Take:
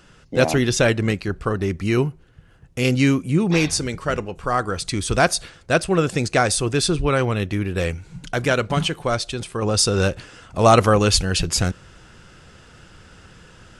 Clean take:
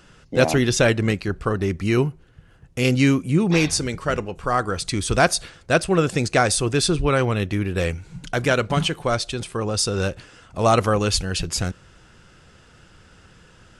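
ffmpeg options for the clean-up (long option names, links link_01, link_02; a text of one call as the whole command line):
ffmpeg -i in.wav -af "asetnsamples=nb_out_samples=441:pad=0,asendcmd='9.62 volume volume -4dB',volume=0dB" out.wav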